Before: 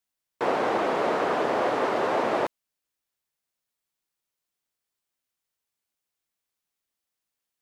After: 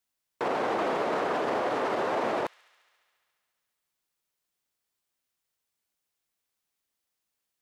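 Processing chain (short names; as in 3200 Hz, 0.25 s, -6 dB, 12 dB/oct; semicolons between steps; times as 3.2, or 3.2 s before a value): limiter -21.5 dBFS, peak gain reduction 9 dB; on a send: thin delay 70 ms, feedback 81%, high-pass 2600 Hz, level -19 dB; on the sum: gain +1.5 dB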